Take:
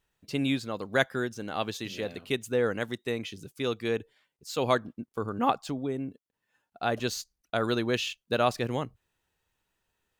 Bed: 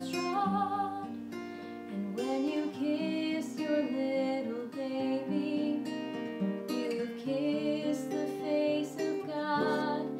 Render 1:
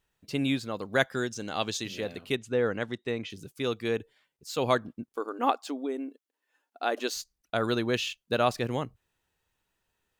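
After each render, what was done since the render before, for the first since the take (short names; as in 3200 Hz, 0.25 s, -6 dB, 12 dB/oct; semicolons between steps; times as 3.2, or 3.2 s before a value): 1.12–1.84 EQ curve 1700 Hz 0 dB, 7100 Hz +9 dB, 11000 Hz -2 dB; 2.35–3.3 air absorption 79 m; 5.16–7.14 brick-wall FIR high-pass 240 Hz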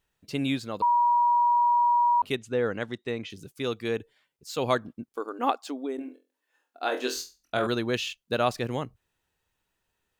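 0.82–2.22 bleep 959 Hz -18.5 dBFS; 5.96–7.67 flutter echo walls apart 4 m, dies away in 0.28 s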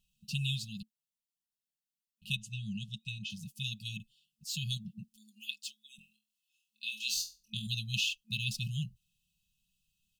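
FFT band-reject 220–2500 Hz; comb 5.8 ms, depth 55%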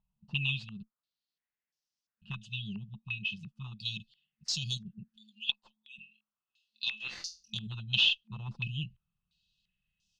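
tube stage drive 24 dB, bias 0.35; stepped low-pass 2.9 Hz 960–5500 Hz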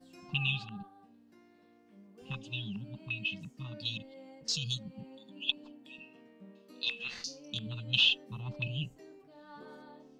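add bed -20.5 dB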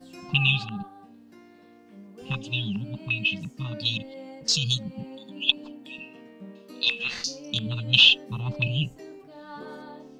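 gain +10 dB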